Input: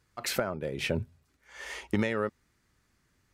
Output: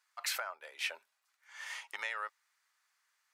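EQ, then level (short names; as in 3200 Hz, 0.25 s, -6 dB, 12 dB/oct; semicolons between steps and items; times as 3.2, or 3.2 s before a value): HPF 860 Hz 24 dB/oct; -2.5 dB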